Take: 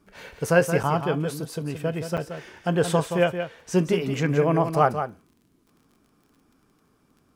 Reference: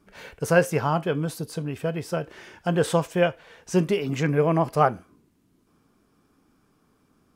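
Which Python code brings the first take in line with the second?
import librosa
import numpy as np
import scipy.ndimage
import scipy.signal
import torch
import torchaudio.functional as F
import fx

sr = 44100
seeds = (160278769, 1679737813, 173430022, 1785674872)

y = fx.fix_declick_ar(x, sr, threshold=6.5)
y = fx.fix_interpolate(y, sr, at_s=(0.83, 2.17), length_ms=7.4)
y = fx.fix_echo_inverse(y, sr, delay_ms=174, level_db=-8.5)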